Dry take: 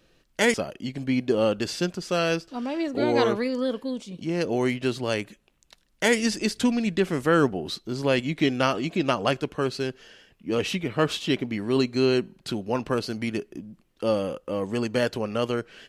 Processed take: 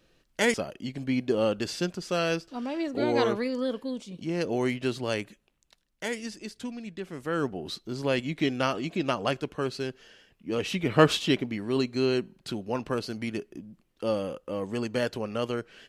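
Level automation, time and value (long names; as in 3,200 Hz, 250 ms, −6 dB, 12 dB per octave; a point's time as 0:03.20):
0:05.20 −3 dB
0:06.39 −14 dB
0:07.03 −14 dB
0:07.68 −4 dB
0:10.69 −4 dB
0:10.96 +5 dB
0:11.59 −4 dB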